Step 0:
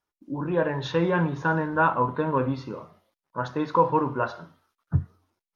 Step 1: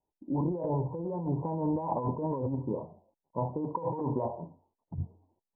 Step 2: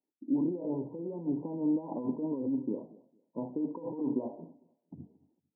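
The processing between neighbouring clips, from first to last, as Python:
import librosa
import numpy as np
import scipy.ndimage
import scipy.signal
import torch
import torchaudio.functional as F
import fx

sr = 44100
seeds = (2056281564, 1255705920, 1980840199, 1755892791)

y1 = scipy.signal.sosfilt(scipy.signal.butter(16, 970.0, 'lowpass', fs=sr, output='sos'), x)
y1 = fx.over_compress(y1, sr, threshold_db=-30.0, ratio=-1.0)
y1 = y1 * librosa.db_to_amplitude(-1.5)
y2 = fx.ladder_bandpass(y1, sr, hz=300.0, resonance_pct=55)
y2 = fx.echo_feedback(y2, sr, ms=226, feedback_pct=24, wet_db=-22.5)
y2 = y2 * librosa.db_to_amplitude(8.0)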